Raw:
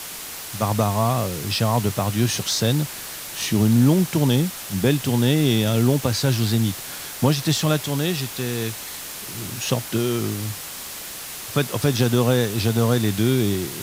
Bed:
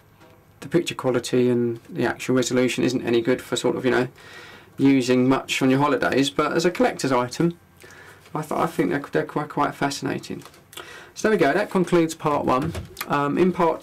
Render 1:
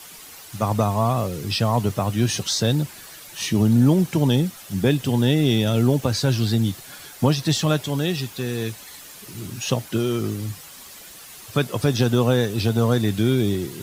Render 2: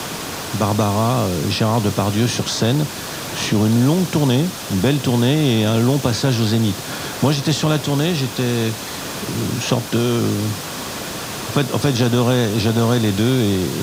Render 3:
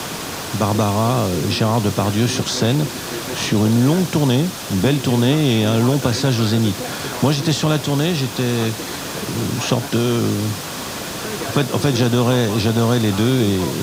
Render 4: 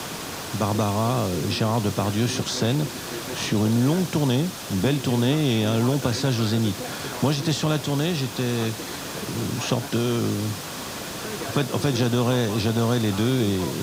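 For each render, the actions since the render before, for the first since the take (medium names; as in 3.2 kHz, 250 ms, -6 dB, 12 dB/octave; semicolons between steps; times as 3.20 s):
noise reduction 10 dB, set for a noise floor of -34 dBFS
spectral levelling over time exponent 0.6; three bands compressed up and down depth 40%
add bed -11 dB
trim -5.5 dB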